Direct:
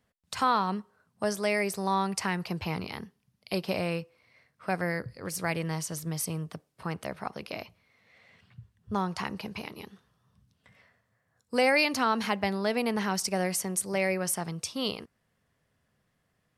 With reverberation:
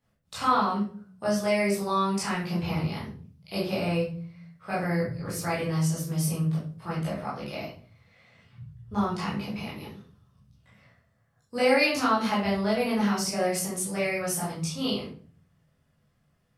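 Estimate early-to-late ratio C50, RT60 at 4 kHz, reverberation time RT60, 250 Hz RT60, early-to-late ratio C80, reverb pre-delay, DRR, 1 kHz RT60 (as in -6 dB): 4.0 dB, 0.35 s, 0.45 s, 1.0 s, 9.0 dB, 15 ms, -8.5 dB, 0.40 s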